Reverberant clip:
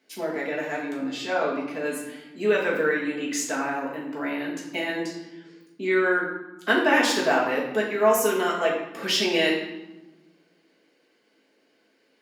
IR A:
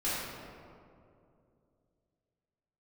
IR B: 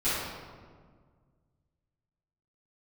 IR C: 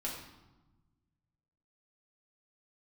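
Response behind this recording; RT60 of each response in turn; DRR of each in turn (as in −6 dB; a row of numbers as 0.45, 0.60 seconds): C; 2.5, 1.7, 1.1 seconds; −11.5, −16.0, −5.0 decibels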